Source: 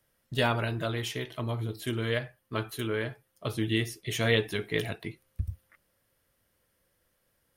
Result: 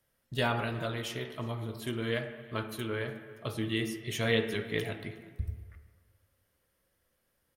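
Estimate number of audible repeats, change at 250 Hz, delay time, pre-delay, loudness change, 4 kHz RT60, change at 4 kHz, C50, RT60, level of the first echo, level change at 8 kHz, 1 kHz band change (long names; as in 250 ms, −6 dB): 1, −2.0 dB, 362 ms, 6 ms, −3.0 dB, 1.0 s, −3.0 dB, 9.0 dB, 1.5 s, −23.0 dB, −3.5 dB, −2.0 dB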